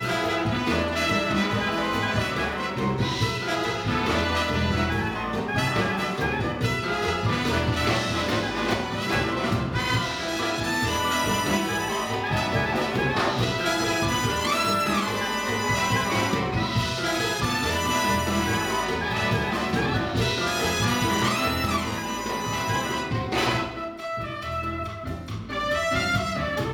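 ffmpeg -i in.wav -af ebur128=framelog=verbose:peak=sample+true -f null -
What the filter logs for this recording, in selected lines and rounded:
Integrated loudness:
  I:         -24.8 LUFS
  Threshold: -34.8 LUFS
Loudness range:
  LRA:         2.8 LU
  Threshold: -44.7 LUFS
  LRA low:   -26.5 LUFS
  LRA high:  -23.8 LUFS
Sample peak:
  Peak:       -9.9 dBFS
True peak:
  Peak:       -9.9 dBFS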